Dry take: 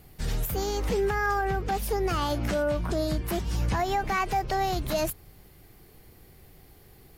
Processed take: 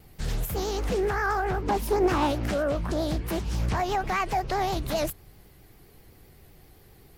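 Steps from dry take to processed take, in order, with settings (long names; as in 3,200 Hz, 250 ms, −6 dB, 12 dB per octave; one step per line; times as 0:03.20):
pitch vibrato 7.7 Hz 96 cents
0:01.62–0:02.30: hollow resonant body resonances 310/950 Hz, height 13 dB → 10 dB, ringing for 30 ms
highs frequency-modulated by the lows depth 0.43 ms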